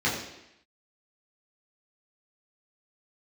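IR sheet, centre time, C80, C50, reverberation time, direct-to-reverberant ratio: 43 ms, 6.5 dB, 4.5 dB, 0.85 s, -7.5 dB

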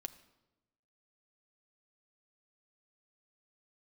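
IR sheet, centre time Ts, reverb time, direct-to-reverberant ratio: 5 ms, 1.0 s, 9.0 dB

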